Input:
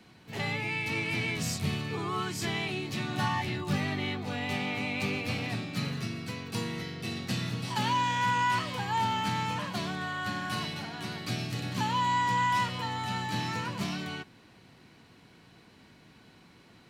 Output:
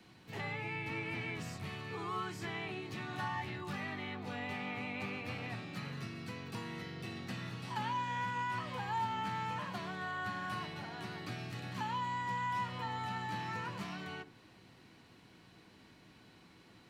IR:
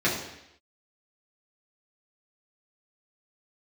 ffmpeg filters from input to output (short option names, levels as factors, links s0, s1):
-filter_complex "[0:a]acrossover=split=780|2200[s0][s1][s2];[s0]acompressor=threshold=0.0126:ratio=4[s3];[s1]acompressor=threshold=0.02:ratio=4[s4];[s2]acompressor=threshold=0.00251:ratio=4[s5];[s3][s4][s5]amix=inputs=3:normalize=0,asplit=2[s6][s7];[1:a]atrim=start_sample=2205,asetrate=70560,aresample=44100[s8];[s7][s8]afir=irnorm=-1:irlink=0,volume=0.0708[s9];[s6][s9]amix=inputs=2:normalize=0,volume=0.631"